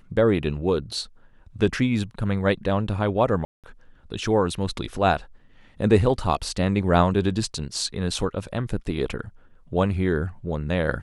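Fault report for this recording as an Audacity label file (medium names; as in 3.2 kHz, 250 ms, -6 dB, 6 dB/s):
3.450000	3.640000	dropout 187 ms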